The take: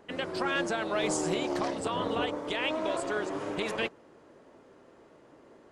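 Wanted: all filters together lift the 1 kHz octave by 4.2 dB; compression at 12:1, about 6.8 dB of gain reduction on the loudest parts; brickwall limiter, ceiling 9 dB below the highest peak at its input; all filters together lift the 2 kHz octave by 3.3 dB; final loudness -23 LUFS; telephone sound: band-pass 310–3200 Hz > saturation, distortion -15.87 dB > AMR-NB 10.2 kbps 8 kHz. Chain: peaking EQ 1 kHz +4.5 dB; peaking EQ 2 kHz +3.5 dB; compression 12:1, threshold -30 dBFS; peak limiter -29.5 dBFS; band-pass 310–3200 Hz; saturation -34.5 dBFS; trim +19.5 dB; AMR-NB 10.2 kbps 8 kHz

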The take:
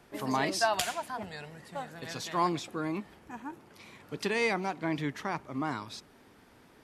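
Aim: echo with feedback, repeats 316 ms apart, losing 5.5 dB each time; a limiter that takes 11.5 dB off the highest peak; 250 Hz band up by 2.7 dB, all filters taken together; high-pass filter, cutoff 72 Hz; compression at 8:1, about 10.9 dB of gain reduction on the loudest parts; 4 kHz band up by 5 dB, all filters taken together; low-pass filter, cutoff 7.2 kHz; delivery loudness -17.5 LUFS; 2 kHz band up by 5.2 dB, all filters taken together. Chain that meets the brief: high-pass 72 Hz; low-pass 7.2 kHz; peaking EQ 250 Hz +3.5 dB; peaking EQ 2 kHz +5 dB; peaking EQ 4 kHz +5.5 dB; compression 8:1, threshold -31 dBFS; peak limiter -29 dBFS; feedback delay 316 ms, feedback 53%, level -5.5 dB; trim +21 dB

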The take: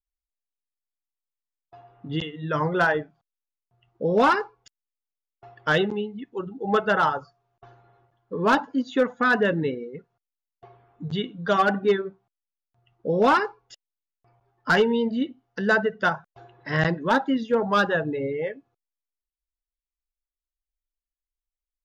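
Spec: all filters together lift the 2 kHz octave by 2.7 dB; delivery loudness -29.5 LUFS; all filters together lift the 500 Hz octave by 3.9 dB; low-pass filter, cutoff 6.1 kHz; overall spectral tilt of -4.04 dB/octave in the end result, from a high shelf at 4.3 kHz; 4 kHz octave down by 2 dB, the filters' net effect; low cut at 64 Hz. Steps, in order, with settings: high-pass 64 Hz; low-pass 6.1 kHz; peaking EQ 500 Hz +4.5 dB; peaking EQ 2 kHz +4 dB; peaking EQ 4 kHz -6.5 dB; treble shelf 4.3 kHz +4 dB; trim -8 dB

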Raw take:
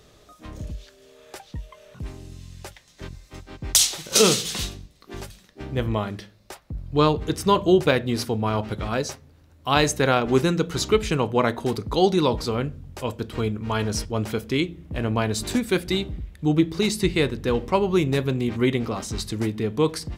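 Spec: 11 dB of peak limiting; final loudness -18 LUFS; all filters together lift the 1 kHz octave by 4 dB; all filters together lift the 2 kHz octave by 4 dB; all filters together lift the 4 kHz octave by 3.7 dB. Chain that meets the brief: peaking EQ 1 kHz +4 dB; peaking EQ 2 kHz +3 dB; peaking EQ 4 kHz +3.5 dB; trim +5.5 dB; peak limiter -4 dBFS

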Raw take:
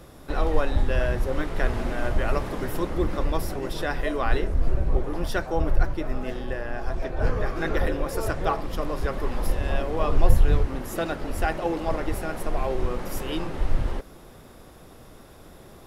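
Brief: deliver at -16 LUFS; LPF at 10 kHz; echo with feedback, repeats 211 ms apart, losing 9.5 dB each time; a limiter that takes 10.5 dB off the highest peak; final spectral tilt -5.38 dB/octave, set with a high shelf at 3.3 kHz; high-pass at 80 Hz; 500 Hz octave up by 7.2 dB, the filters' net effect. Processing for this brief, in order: high-pass 80 Hz; low-pass 10 kHz; peaking EQ 500 Hz +8.5 dB; treble shelf 3.3 kHz +7.5 dB; peak limiter -16 dBFS; feedback delay 211 ms, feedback 33%, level -9.5 dB; trim +10.5 dB

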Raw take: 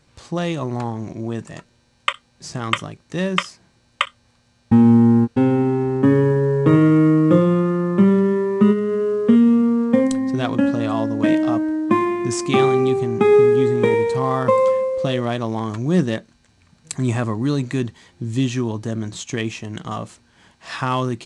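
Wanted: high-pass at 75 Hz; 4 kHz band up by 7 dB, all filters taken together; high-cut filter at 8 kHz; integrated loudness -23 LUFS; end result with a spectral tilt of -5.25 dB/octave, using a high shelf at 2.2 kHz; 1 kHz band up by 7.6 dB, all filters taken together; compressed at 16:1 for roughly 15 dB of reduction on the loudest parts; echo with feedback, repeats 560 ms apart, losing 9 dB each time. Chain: high-pass 75 Hz; low-pass 8 kHz; peaking EQ 1 kHz +7.5 dB; treble shelf 2.2 kHz +6 dB; peaking EQ 4 kHz +3.5 dB; compression 16:1, threshold -22 dBFS; feedback delay 560 ms, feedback 35%, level -9 dB; trim +3.5 dB

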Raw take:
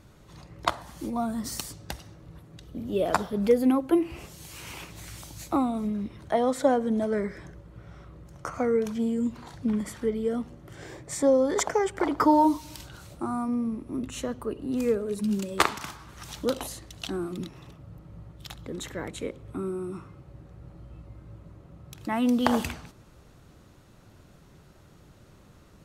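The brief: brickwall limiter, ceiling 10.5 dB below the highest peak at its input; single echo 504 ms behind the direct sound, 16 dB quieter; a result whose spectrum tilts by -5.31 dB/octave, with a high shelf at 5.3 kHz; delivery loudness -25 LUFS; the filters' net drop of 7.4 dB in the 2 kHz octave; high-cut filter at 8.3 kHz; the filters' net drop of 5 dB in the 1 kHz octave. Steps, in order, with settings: low-pass 8.3 kHz; peaking EQ 1 kHz -4.5 dB; peaking EQ 2 kHz -9 dB; treble shelf 5.3 kHz +6.5 dB; peak limiter -19 dBFS; delay 504 ms -16 dB; trim +6 dB

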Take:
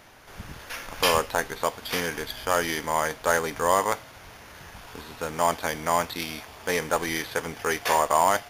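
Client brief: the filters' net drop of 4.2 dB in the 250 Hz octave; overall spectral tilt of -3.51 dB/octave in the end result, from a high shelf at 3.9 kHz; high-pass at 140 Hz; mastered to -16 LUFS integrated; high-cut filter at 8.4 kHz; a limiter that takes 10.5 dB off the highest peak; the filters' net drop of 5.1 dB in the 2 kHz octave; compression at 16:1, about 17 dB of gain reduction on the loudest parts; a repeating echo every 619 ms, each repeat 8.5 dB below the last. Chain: high-pass 140 Hz; low-pass 8.4 kHz; peaking EQ 250 Hz -5 dB; peaking EQ 2 kHz -4.5 dB; treble shelf 3.9 kHz -9 dB; compression 16:1, threshold -35 dBFS; peak limiter -29 dBFS; feedback delay 619 ms, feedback 38%, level -8.5 dB; trim +26.5 dB

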